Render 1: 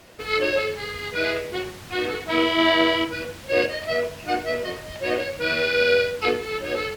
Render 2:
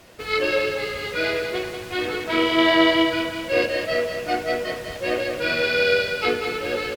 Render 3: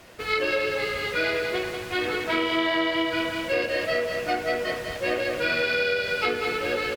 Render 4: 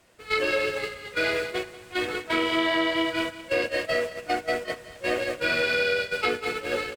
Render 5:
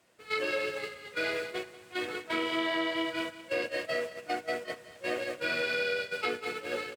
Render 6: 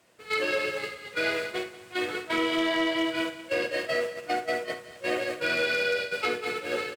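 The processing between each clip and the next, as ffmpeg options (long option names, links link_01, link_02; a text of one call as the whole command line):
ffmpeg -i in.wav -af "aecho=1:1:191|382|573|764|955|1146:0.447|0.228|0.116|0.0593|0.0302|0.0154" out.wav
ffmpeg -i in.wav -filter_complex "[0:a]acompressor=threshold=-21dB:ratio=6,acrossover=split=2100[link_01][link_02];[link_01]crystalizer=i=5:c=0[link_03];[link_03][link_02]amix=inputs=2:normalize=0,volume=-1dB" out.wav
ffmpeg -i in.wav -af "agate=range=-12dB:threshold=-26dB:ratio=16:detection=peak,equalizer=frequency=8200:width_type=o:width=0.5:gain=6.5" out.wav
ffmpeg -i in.wav -af "highpass=120,volume=-6.5dB" out.wav
ffmpeg -i in.wav -filter_complex "[0:a]asoftclip=type=hard:threshold=-23dB,asplit=2[link_01][link_02];[link_02]aecho=0:1:52|71:0.282|0.168[link_03];[link_01][link_03]amix=inputs=2:normalize=0,volume=4dB" out.wav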